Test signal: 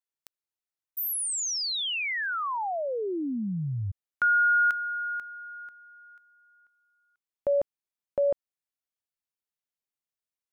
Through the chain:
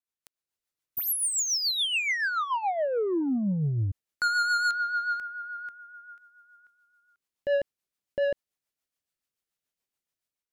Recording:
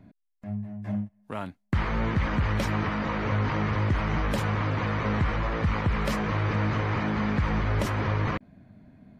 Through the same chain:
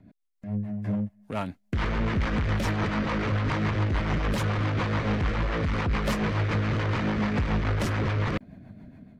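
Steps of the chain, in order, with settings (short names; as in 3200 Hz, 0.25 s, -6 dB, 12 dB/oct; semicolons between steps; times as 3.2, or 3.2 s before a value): AGC gain up to 7.5 dB; soft clip -21 dBFS; rotary speaker horn 7 Hz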